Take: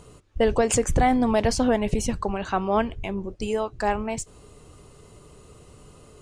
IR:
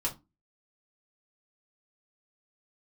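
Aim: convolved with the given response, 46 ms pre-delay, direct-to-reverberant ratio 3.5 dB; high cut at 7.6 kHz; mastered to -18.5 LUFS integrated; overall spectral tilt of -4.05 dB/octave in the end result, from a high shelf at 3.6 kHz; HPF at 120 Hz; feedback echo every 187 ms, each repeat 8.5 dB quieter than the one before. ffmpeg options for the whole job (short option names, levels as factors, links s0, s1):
-filter_complex "[0:a]highpass=120,lowpass=7600,highshelf=f=3600:g=6,aecho=1:1:187|374|561|748:0.376|0.143|0.0543|0.0206,asplit=2[s0][s1];[1:a]atrim=start_sample=2205,adelay=46[s2];[s1][s2]afir=irnorm=-1:irlink=0,volume=0.398[s3];[s0][s3]amix=inputs=2:normalize=0,volume=1.58"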